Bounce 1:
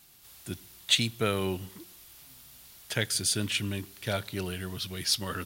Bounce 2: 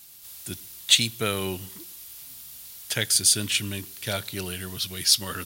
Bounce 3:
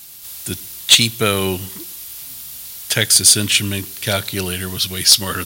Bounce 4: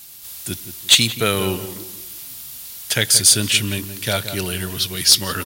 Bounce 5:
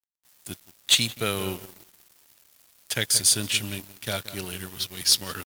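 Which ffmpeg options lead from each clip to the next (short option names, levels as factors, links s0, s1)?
-af "highshelf=f=3200:g=10.5"
-af "aeval=exprs='0.891*sin(PI/2*2*val(0)/0.891)':c=same"
-filter_complex "[0:a]asplit=2[s0][s1];[s1]adelay=175,lowpass=f=1500:p=1,volume=0.299,asplit=2[s2][s3];[s3]adelay=175,lowpass=f=1500:p=1,volume=0.36,asplit=2[s4][s5];[s5]adelay=175,lowpass=f=1500:p=1,volume=0.36,asplit=2[s6][s7];[s7]adelay=175,lowpass=f=1500:p=1,volume=0.36[s8];[s0][s2][s4][s6][s8]amix=inputs=5:normalize=0,volume=0.794"
-af "aeval=exprs='sgn(val(0))*max(abs(val(0))-0.0316,0)':c=same,volume=0.473"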